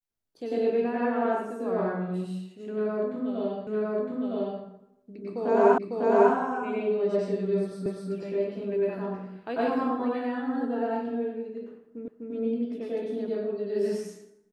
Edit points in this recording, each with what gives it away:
0:03.67: the same again, the last 0.96 s
0:05.78: the same again, the last 0.55 s
0:07.86: the same again, the last 0.25 s
0:12.08: the same again, the last 0.25 s

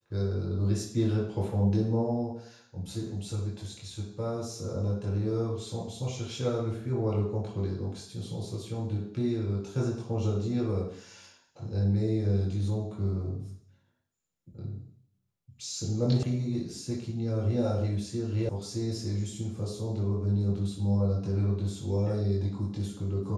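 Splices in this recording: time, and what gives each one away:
0:16.23: cut off before it has died away
0:18.49: cut off before it has died away

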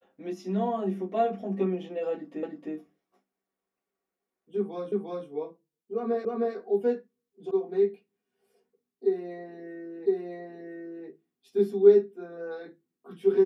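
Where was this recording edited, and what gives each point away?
0:02.43: the same again, the last 0.31 s
0:04.92: the same again, the last 0.35 s
0:06.25: the same again, the last 0.31 s
0:07.51: cut off before it has died away
0:10.06: the same again, the last 1.01 s

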